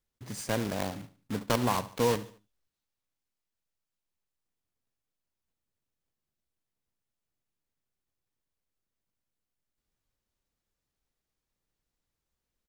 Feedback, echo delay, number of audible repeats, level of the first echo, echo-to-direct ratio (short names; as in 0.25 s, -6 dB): 41%, 73 ms, 3, -17.0 dB, -16.0 dB